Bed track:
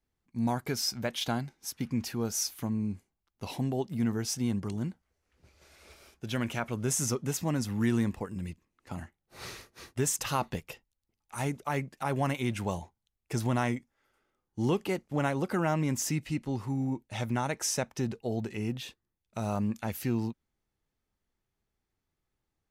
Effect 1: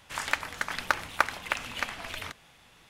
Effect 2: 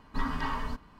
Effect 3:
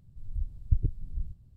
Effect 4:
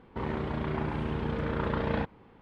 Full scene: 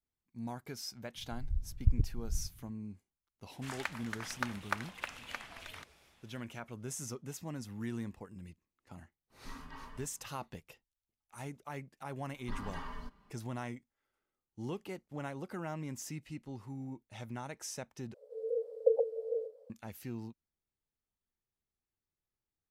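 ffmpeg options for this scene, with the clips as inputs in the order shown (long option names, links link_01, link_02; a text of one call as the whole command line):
ffmpeg -i bed.wav -i cue0.wav -i cue1.wav -i cue2.wav -filter_complex "[3:a]asplit=2[link_01][link_02];[2:a]asplit=2[link_03][link_04];[0:a]volume=-12dB[link_05];[link_04]aecho=1:1:5:0.4[link_06];[link_02]afreqshift=430[link_07];[link_05]asplit=2[link_08][link_09];[link_08]atrim=end=18.144[link_10];[link_07]atrim=end=1.56,asetpts=PTS-STARTPTS,volume=-4dB[link_11];[link_09]atrim=start=19.696[link_12];[link_01]atrim=end=1.56,asetpts=PTS-STARTPTS,volume=-2dB,afade=type=in:duration=0.004:curve=hsin,afade=type=out:start_time=1.556:duration=0.004:curve=hsin,adelay=1150[link_13];[1:a]atrim=end=2.89,asetpts=PTS-STARTPTS,volume=-10.5dB,afade=type=in:duration=0.004:curve=hsin,afade=type=out:start_time=2.886:duration=0.004:curve=hsin,adelay=3520[link_14];[link_03]atrim=end=0.99,asetpts=PTS-STARTPTS,volume=-17dB,afade=type=in:duration=0.004:curve=hsin,afade=type=out:start_time=0.986:duration=0.004:curve=hsin,adelay=410130S[link_15];[link_06]atrim=end=0.99,asetpts=PTS-STARTPTS,volume=-11.5dB,afade=type=in:duration=0.004:curve=hsin,afade=type=out:start_time=0.986:duration=0.004:curve=hsin,adelay=12330[link_16];[link_10][link_11]acrossfade=duration=0.004:curve1=hsin:curve2=hsin[link_17];[link_17][link_12]acrossfade=duration=0.004:curve1=hsin:curve2=hsin[link_18];[link_18][link_13][link_14][link_15][link_16]amix=inputs=5:normalize=0" out.wav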